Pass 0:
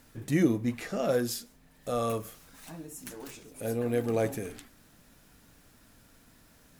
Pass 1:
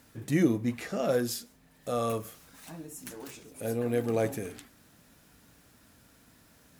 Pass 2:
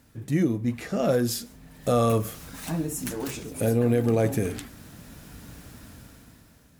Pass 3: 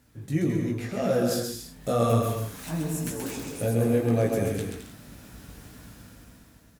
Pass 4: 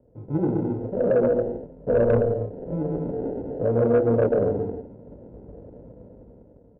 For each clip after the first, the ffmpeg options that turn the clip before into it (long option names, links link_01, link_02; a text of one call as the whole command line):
ffmpeg -i in.wav -af "highpass=53" out.wav
ffmpeg -i in.wav -af "lowshelf=frequency=220:gain=9,dynaudnorm=framelen=230:gausssize=9:maxgain=15dB,alimiter=limit=-11dB:level=0:latency=1:release=322,volume=-2.5dB" out.wav
ffmpeg -i in.wav -filter_complex "[0:a]flanger=delay=16:depth=4.5:speed=1.9,asplit=2[link_01][link_02];[link_02]aecho=0:1:130|214.5|269.4|305.1|328.3:0.631|0.398|0.251|0.158|0.1[link_03];[link_01][link_03]amix=inputs=2:normalize=0" out.wav
ffmpeg -i in.wav -af "acrusher=samples=38:mix=1:aa=0.000001,lowpass=frequency=500:width_type=q:width=3.8,asoftclip=type=tanh:threshold=-12dB" out.wav